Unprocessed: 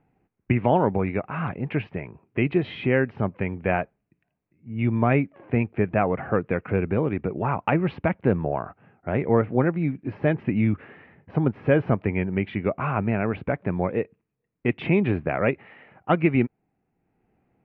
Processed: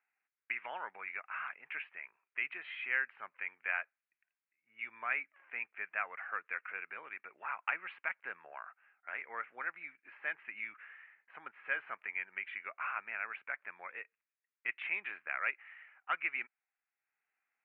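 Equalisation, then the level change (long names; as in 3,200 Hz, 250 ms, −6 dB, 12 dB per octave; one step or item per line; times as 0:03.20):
flat-topped band-pass 1,900 Hz, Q 1.4
−3.5 dB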